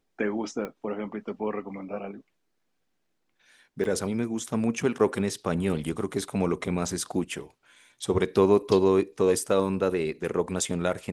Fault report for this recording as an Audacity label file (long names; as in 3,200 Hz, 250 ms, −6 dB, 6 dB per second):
0.650000	0.650000	click −21 dBFS
3.840000	3.850000	drop-out 5.9 ms